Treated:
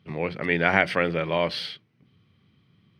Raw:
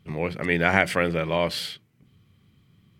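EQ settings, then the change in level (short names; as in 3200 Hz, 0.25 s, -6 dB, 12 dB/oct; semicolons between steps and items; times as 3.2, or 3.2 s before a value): polynomial smoothing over 15 samples; HPF 77 Hz; low shelf 140 Hz -4.5 dB; 0.0 dB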